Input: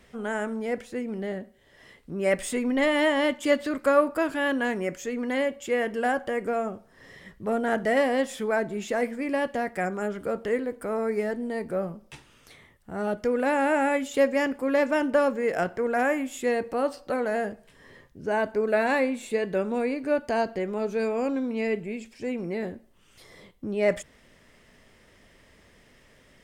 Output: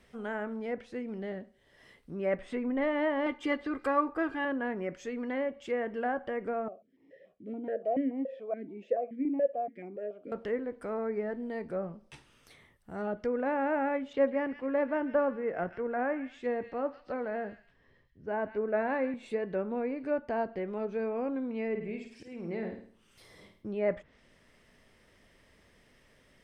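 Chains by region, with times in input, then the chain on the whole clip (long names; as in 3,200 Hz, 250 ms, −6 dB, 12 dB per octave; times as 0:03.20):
0:03.26–0:04.45: high-shelf EQ 3,500 Hz +9.5 dB + comb filter 2.5 ms
0:06.68–0:10.32: low shelf with overshoot 720 Hz +7 dB, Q 3 + formant filter that steps through the vowels 7 Hz
0:14.13–0:19.14: high-frequency loss of the air 140 metres + delay with a high-pass on its return 140 ms, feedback 33%, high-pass 2,100 Hz, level −7 dB + multiband upward and downward expander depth 40%
0:21.70–0:23.65: volume swells 236 ms + flutter between parallel walls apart 9.1 metres, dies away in 0.49 s
whole clip: treble cut that deepens with the level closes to 1,700 Hz, closed at −23 dBFS; notch filter 7,000 Hz, Q 10; level −6 dB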